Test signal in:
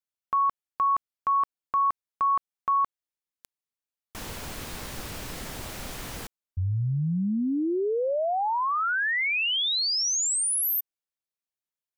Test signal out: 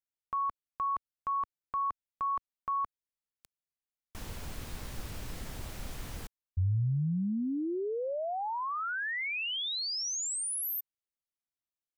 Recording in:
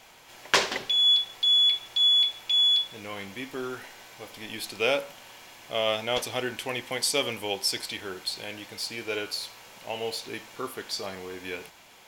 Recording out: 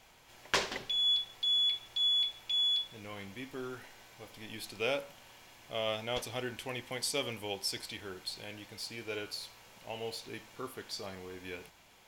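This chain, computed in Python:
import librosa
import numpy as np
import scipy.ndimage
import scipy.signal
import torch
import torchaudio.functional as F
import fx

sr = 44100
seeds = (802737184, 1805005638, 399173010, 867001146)

y = fx.low_shelf(x, sr, hz=140.0, db=10.5)
y = F.gain(torch.from_numpy(y), -8.5).numpy()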